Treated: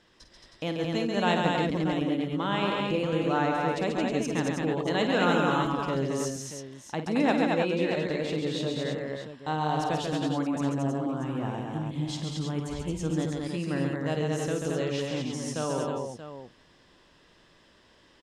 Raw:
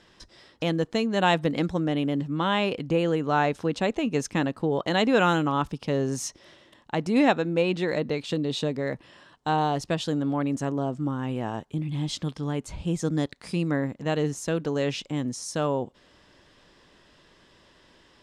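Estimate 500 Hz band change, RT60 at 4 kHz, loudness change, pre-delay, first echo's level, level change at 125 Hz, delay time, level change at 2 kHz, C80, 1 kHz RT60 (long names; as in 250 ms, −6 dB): −2.0 dB, no reverb audible, −2.0 dB, no reverb audible, −9.5 dB, −2.0 dB, 51 ms, −2.0 dB, no reverb audible, no reverb audible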